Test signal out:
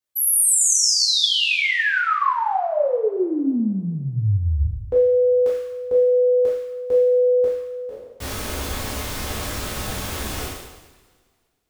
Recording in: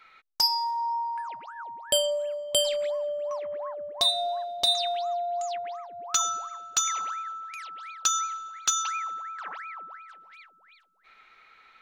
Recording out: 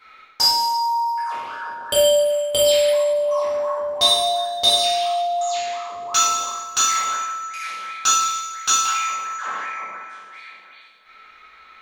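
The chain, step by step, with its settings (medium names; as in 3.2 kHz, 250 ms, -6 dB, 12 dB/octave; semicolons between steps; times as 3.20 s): spectral sustain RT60 0.97 s; two-slope reverb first 0.43 s, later 2.1 s, from -21 dB, DRR -5 dB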